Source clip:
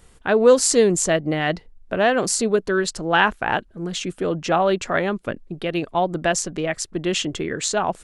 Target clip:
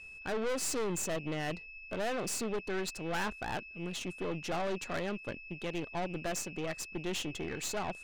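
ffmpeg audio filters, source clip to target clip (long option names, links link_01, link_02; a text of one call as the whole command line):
ffmpeg -i in.wav -af "aeval=exprs='val(0)+0.0178*sin(2*PI*2600*n/s)':channel_layout=same,aeval=exprs='(tanh(14.1*val(0)+0.65)-tanh(0.65))/14.1':channel_layout=same,volume=-8.5dB" out.wav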